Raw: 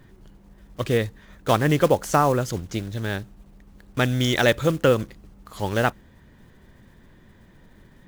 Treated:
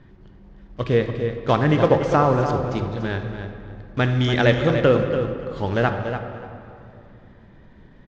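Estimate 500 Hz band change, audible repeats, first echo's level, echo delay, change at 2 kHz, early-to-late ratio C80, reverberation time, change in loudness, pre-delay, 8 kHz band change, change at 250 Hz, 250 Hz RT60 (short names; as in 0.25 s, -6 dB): +3.0 dB, 2, -9.0 dB, 0.289 s, +0.5 dB, 5.5 dB, 2.7 s, +2.0 dB, 10 ms, under -10 dB, +3.0 dB, 3.1 s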